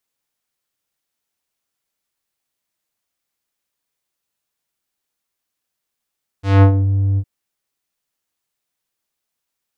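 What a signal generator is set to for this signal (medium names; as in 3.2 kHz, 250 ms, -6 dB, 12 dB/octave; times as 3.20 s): synth note square G2 12 dB/octave, low-pass 170 Hz, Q 0.71, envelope 5.5 oct, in 0.43 s, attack 195 ms, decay 0.09 s, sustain -8 dB, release 0.06 s, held 0.75 s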